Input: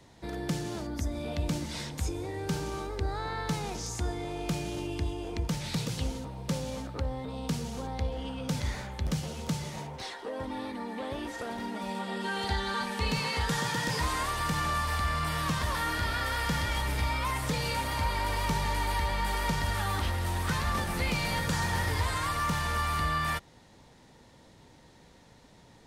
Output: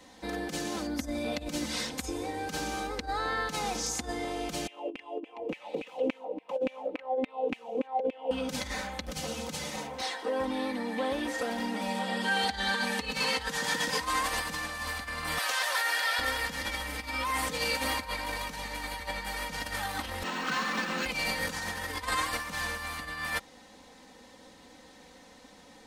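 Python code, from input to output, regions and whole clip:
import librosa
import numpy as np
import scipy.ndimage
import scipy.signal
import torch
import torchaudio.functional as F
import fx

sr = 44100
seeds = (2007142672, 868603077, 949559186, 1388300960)

y = fx.chain(x, sr, fx.curve_eq(hz=(580.0, 940.0, 1500.0, 2700.0, 4600.0), db=(0, -10, -28, -12, -30)),
    fx.filter_lfo_highpass(shape='saw_down', hz=3.5, low_hz=270.0, high_hz=2500.0, q=5.9), at=(4.67, 8.31))
y = fx.chain(y, sr, fx.highpass(hz=570.0, slope=24),
    fx.notch(hz=1100.0, q=6.8), at=(15.38, 16.19))
y = fx.chain(y, sr, fx.lower_of_two(delay_ms=0.7),
    fx.brickwall_highpass(low_hz=150.0),
    fx.resample_linear(factor=4), at=(20.23, 21.06))
y = fx.over_compress(y, sr, threshold_db=-32.0, ratio=-0.5)
y = fx.low_shelf(y, sr, hz=170.0, db=-12.0)
y = y + 0.77 * np.pad(y, (int(3.9 * sr / 1000.0), 0))[:len(y)]
y = F.gain(torch.from_numpy(y), 1.5).numpy()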